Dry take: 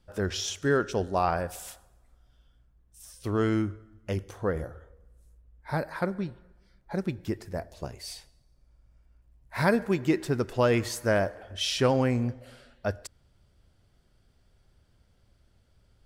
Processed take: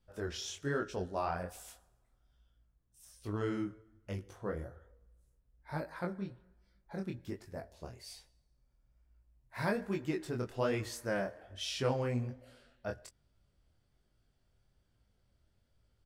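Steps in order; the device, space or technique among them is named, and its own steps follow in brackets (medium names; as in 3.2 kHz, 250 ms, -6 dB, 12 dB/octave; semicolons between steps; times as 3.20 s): double-tracked vocal (doubling 16 ms -13.5 dB; chorus 1.2 Hz, delay 19 ms, depth 6.6 ms); trim -6.5 dB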